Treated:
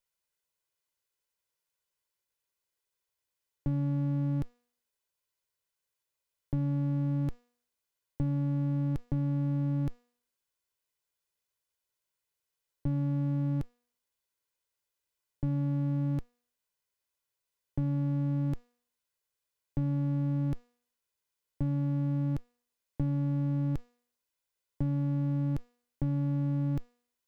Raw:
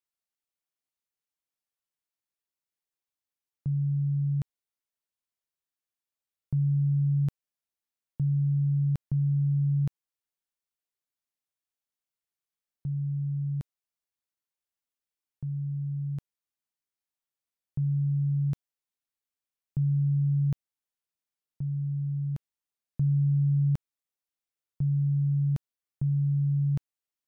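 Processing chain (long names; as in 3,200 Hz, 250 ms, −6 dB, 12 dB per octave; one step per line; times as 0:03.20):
lower of the sound and its delayed copy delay 2 ms
hum removal 242 Hz, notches 32
brickwall limiter −29 dBFS, peak gain reduction 9.5 dB
level +6.5 dB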